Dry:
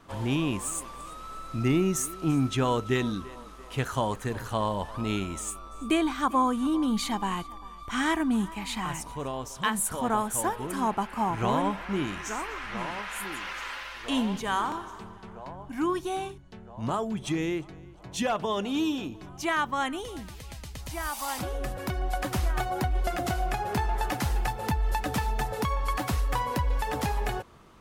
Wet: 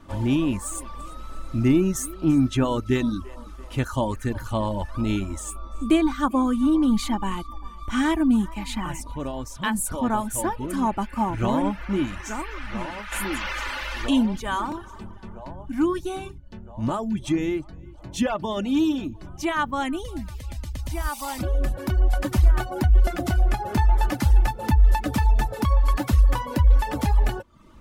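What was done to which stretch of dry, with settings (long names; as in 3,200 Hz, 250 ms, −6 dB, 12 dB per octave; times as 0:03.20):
0:07.25–0:09.75: floating-point word with a short mantissa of 6 bits
0:13.12–0:14.26: envelope flattener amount 50%
whole clip: reverb reduction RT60 0.52 s; low-shelf EQ 260 Hz +11 dB; comb filter 3.4 ms, depth 44%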